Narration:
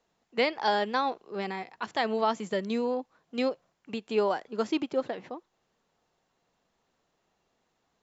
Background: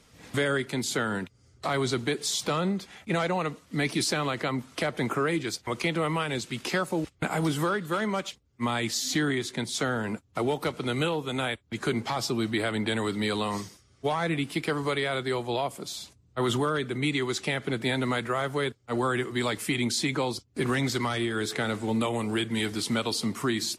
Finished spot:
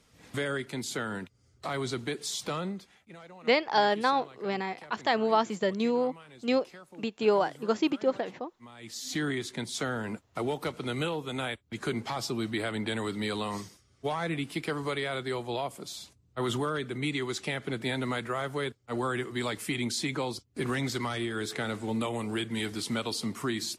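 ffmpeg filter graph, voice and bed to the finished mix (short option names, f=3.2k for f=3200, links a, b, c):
-filter_complex "[0:a]adelay=3100,volume=2dB[a];[1:a]volume=12.5dB,afade=t=out:st=2.55:d=0.57:silence=0.149624,afade=t=in:st=8.77:d=0.48:silence=0.125893[b];[a][b]amix=inputs=2:normalize=0"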